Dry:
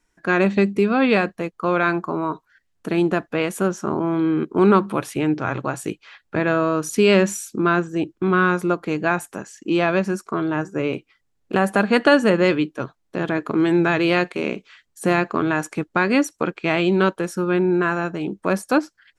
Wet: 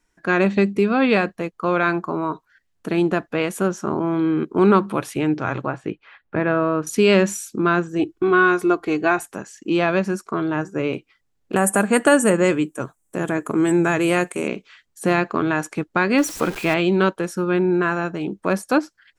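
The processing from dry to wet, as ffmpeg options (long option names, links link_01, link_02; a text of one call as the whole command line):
ffmpeg -i in.wav -filter_complex "[0:a]asettb=1/sr,asplit=3[link_01][link_02][link_03];[link_01]atrim=end=5.654[link_04];[link_02]atrim=start=5.65:end=6.87,asetpts=PTS-STARTPTS,afade=type=in:duration=0.004:curve=qsin,afade=type=out:start_time=1.216:duration=0.004:curve=qsin,lowpass=2300[link_05];[link_03]atrim=start=6.866[link_06];[link_04][link_05]acrossfade=duration=0.004:curve1=hsin:curve2=qsin[link_07];[link_07][link_06]acrossfade=duration=0.004:curve1=qsin:curve2=hsin,asettb=1/sr,asplit=3[link_08][link_09][link_10];[link_08]atrim=end=7.994[link_11];[link_09]atrim=start=7.99:end=9.23,asetpts=PTS-STARTPTS,afade=type=in:duration=0.004:curve=qsin,afade=type=out:start_time=1.236:duration=0.004:curve=qsin,aecho=1:1:2.7:0.65,atrim=end_sample=54684[link_12];[link_10]atrim=start=9.226[link_13];[link_11][link_12]acrossfade=duration=0.004:curve1=hsin:curve2=qsin[link_14];[link_14][link_13]acrossfade=duration=0.004:curve1=qsin:curve2=hsin,asettb=1/sr,asplit=3[link_15][link_16][link_17];[link_15]atrim=end=11.564[link_18];[link_16]atrim=start=11.56:end=14.48,asetpts=PTS-STARTPTS,afade=type=in:duration=0.004:curve=qsin,afade=type=out:start_time=2.916:duration=0.004:curve=qsin,highshelf=frequency=6100:width_type=q:width=3:gain=12.5[link_19];[link_17]atrim=start=14.476[link_20];[link_18][link_19]acrossfade=duration=0.004:curve1=hsin:curve2=qsin[link_21];[link_21][link_20]acrossfade=duration=0.004:curve1=qsin:curve2=hsin,asettb=1/sr,asplit=3[link_22][link_23][link_24];[link_22]atrim=end=16.184[link_25];[link_23]atrim=start=16.18:end=16.74,asetpts=PTS-STARTPTS,afade=type=in:duration=0.004:curve=qsin,afade=type=out:start_time=0.556:duration=0.004:curve=qsin,aeval=exprs='val(0)+0.5*0.0398*sgn(val(0))':channel_layout=same[link_26];[link_24]atrim=start=16.736[link_27];[link_25][link_26]acrossfade=duration=0.004:curve1=hsin:curve2=qsin[link_28];[link_28][link_27]acrossfade=duration=0.004:curve1=qsin:curve2=hsin" out.wav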